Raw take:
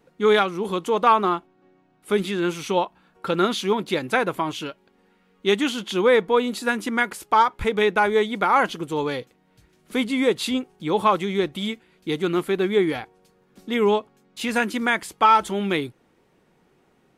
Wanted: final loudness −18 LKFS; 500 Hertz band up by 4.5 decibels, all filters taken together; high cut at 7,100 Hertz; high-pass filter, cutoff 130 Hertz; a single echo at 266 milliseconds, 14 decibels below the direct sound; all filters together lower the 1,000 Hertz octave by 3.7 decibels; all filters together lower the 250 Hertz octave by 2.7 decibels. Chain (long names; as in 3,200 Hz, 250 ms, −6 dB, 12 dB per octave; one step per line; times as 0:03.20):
high-pass filter 130 Hz
low-pass filter 7,100 Hz
parametric band 250 Hz −7 dB
parametric band 500 Hz +9 dB
parametric band 1,000 Hz −7 dB
single-tap delay 266 ms −14 dB
level +3 dB